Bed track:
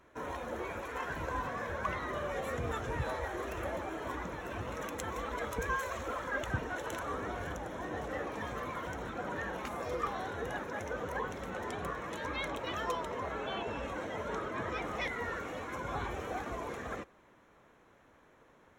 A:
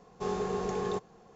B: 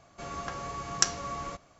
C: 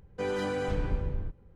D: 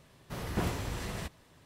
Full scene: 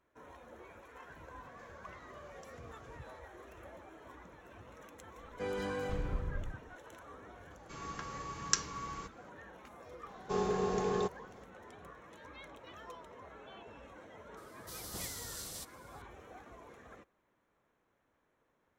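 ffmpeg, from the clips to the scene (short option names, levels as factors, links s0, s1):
-filter_complex "[2:a]asplit=2[s0][s1];[0:a]volume=0.188[s2];[s0]acompressor=threshold=0.00447:ratio=6:attack=3.2:release=140:knee=1:detection=peak[s3];[s1]asuperstop=centerf=640:order=20:qfactor=2.1[s4];[4:a]aexciter=amount=6.9:drive=7.4:freq=3500[s5];[s3]atrim=end=1.79,asetpts=PTS-STARTPTS,volume=0.251,afade=t=in:d=0.004:c=hsin,afade=t=out:st=1.786:d=0.004:c=hsin,adelay=1410[s6];[3:a]atrim=end=1.55,asetpts=PTS-STARTPTS,volume=0.473,afade=t=in:d=0.004:c=hsin,afade=t=out:st=1.546:d=0.004:c=hsin,adelay=229761S[s7];[s4]atrim=end=1.79,asetpts=PTS-STARTPTS,volume=0.531,afade=t=in:d=0.004:c=hsin,afade=t=out:st=1.786:d=0.004:c=hsin,adelay=7510[s8];[1:a]atrim=end=1.35,asetpts=PTS-STARTPTS,volume=0.944,afade=t=in:d=0.004:c=hsin,afade=t=out:st=1.346:d=0.004:c=hsin,adelay=10090[s9];[s5]atrim=end=1.65,asetpts=PTS-STARTPTS,volume=0.15,afade=t=in:d=0.004:c=hsin,afade=t=out:st=1.646:d=0.004:c=hsin,adelay=14370[s10];[s2][s6][s7][s8][s9][s10]amix=inputs=6:normalize=0"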